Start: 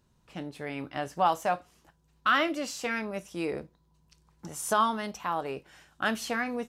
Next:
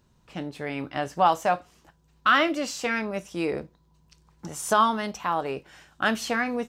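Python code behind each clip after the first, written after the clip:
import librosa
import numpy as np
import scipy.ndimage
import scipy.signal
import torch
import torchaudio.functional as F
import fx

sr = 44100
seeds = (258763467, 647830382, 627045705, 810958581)

y = fx.peak_eq(x, sr, hz=11000.0, db=-6.5, octaves=0.45)
y = F.gain(torch.from_numpy(y), 4.5).numpy()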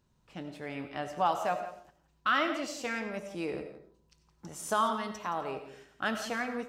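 y = x + 10.0 ** (-14.0 / 20.0) * np.pad(x, (int(170 * sr / 1000.0), 0))[:len(x)]
y = fx.rev_freeverb(y, sr, rt60_s=0.5, hf_ratio=0.35, predelay_ms=50, drr_db=9.0)
y = F.gain(torch.from_numpy(y), -8.0).numpy()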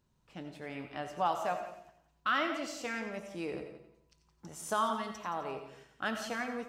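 y = fx.echo_feedback(x, sr, ms=88, feedback_pct=52, wet_db=-13.5)
y = F.gain(torch.from_numpy(y), -3.0).numpy()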